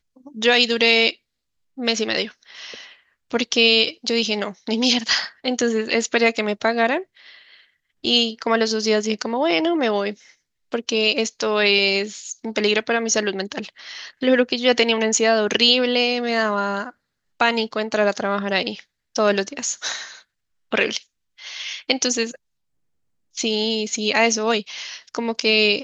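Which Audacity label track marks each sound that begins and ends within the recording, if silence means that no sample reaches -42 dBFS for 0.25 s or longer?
1.770000	2.940000	sound
3.310000	7.610000	sound
8.040000	10.320000	sound
10.720000	16.910000	sound
17.400000	18.820000	sound
19.150000	20.210000	sound
20.720000	21.030000	sound
21.380000	22.360000	sound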